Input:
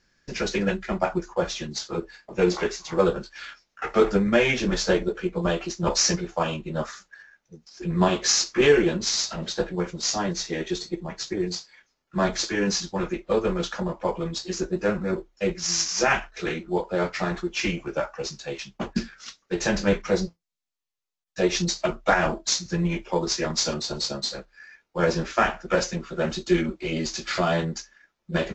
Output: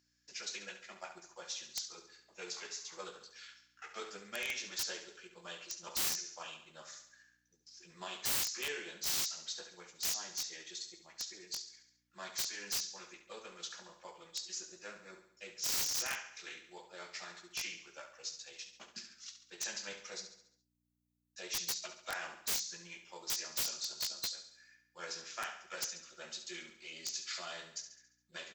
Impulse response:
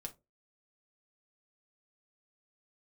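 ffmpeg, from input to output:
-filter_complex "[0:a]aeval=exprs='val(0)+0.01*(sin(2*PI*60*n/s)+sin(2*PI*2*60*n/s)/2+sin(2*PI*3*60*n/s)/3+sin(2*PI*4*60*n/s)/4+sin(2*PI*5*60*n/s)/5)':c=same,aderivative,asplit=2[a][b];[b]aecho=0:1:69|138|207|276|345|414:0.335|0.171|0.0871|0.0444|0.0227|0.0116[c];[a][c]amix=inputs=2:normalize=0,aeval=exprs='(mod(14.1*val(0)+1,2)-1)/14.1':c=same,volume=-5dB"

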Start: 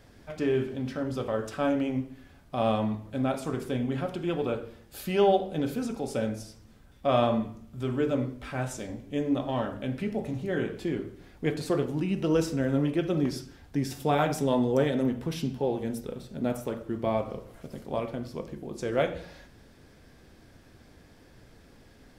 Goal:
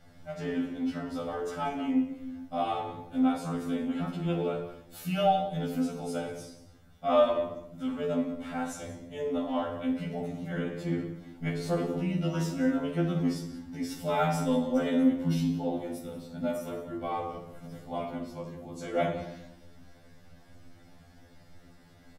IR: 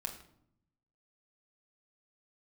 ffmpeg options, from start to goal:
-filter_complex "[0:a]aecho=1:1:185:0.133[a];[1:a]atrim=start_sample=2205,asetrate=36603,aresample=44100[b];[a][b]afir=irnorm=-1:irlink=0,afftfilt=real='re*2*eq(mod(b,4),0)':imag='im*2*eq(mod(b,4),0)':win_size=2048:overlap=0.75"

